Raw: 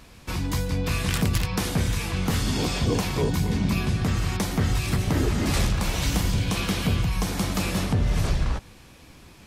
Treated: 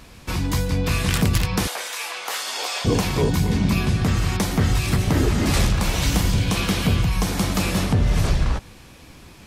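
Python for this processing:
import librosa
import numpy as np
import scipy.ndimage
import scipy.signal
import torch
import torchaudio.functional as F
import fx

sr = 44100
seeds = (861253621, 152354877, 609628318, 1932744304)

y = fx.highpass(x, sr, hz=590.0, slope=24, at=(1.67, 2.85))
y = y * 10.0 ** (4.0 / 20.0)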